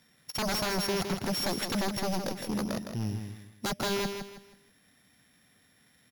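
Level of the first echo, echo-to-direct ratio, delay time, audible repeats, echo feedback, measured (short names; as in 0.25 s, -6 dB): -7.0 dB, -6.5 dB, 0.161 s, 3, 32%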